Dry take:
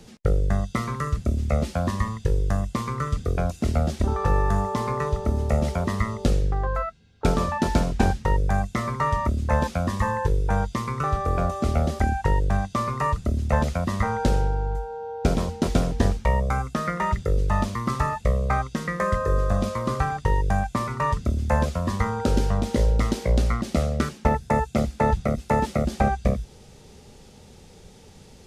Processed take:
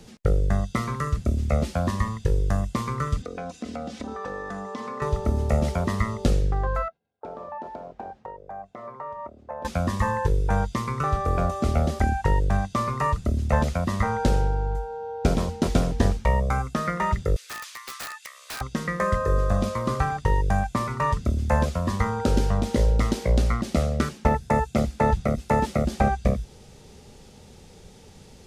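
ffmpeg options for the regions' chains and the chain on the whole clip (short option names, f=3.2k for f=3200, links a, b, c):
-filter_complex "[0:a]asettb=1/sr,asplit=3[a][b][c];[a]atrim=end=3.224[d];[b]atrim=start=3.22:end=5.02,asetpts=PTS-STARTPTS,afade=t=in:d=0.004:c=qsin,afade=t=out:st=1.796:d=0.004:c=qsin,highpass=190,lowpass=6.5k,aecho=1:1:4:0.74,atrim=end_sample=79380,acompressor=threshold=-33dB:ratio=2.5:attack=3.2:release=140:knee=1:detection=peak[e];[c]atrim=start=5.016[f];[d][e]acrossfade=d=0.004:c1=hsin:c2=qsin[g];[g][f]acrossfade=d=0.004:c1=qsin:c2=hsin,asettb=1/sr,asplit=3[h][i][j];[h]atrim=end=6.884[k];[i]atrim=start=6.88:end=9.65,asetpts=PTS-STARTPTS,afade=t=in:d=0.004:c=qsin,afade=t=out:st=2.766:d=0.004:c=qsin,agate=range=-33dB:threshold=-52dB:ratio=3:release=100:detection=peak,acompressor=threshold=-27dB:ratio=2.5:attack=3.2:release=140:knee=1:detection=peak,bandpass=f=680:t=q:w=2[l];[j]atrim=start=9.646[m];[k][l]acrossfade=d=0.004:c1=hsin:c2=qsin[n];[n][m]acrossfade=d=0.004:c1=qsin:c2=hsin,asettb=1/sr,asplit=3[o][p][q];[o]atrim=end=17.364[r];[p]atrim=start=17.36:end=18.61,asetpts=PTS-STARTPTS,afade=t=in:d=0.004:c=qsin,afade=t=out:st=1.246:d=0.004:c=qsin,highpass=f=1.5k:w=0.5412,highpass=f=1.5k:w=1.3066,acompressor=mode=upward:threshold=-39dB:ratio=2.5:attack=3.2:release=140:knee=2.83:detection=peak,aeval=exprs='(mod(26.6*val(0)+1,2)-1)/26.6':c=same[s];[q]atrim=start=18.606[t];[r][s]acrossfade=d=0.004:c1=hsin:c2=qsin[u];[u][t]acrossfade=d=0.004:c1=qsin:c2=hsin"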